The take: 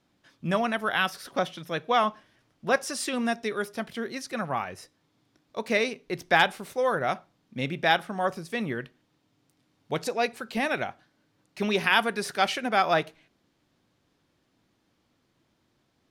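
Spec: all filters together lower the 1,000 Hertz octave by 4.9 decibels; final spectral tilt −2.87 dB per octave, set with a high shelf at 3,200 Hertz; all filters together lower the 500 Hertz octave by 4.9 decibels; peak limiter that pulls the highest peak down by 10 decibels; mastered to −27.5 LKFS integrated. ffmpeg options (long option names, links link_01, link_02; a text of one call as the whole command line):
ffmpeg -i in.wav -af "equalizer=frequency=500:width_type=o:gain=-4.5,equalizer=frequency=1000:width_type=o:gain=-6,highshelf=frequency=3200:gain=7,volume=3dB,alimiter=limit=-12.5dB:level=0:latency=1" out.wav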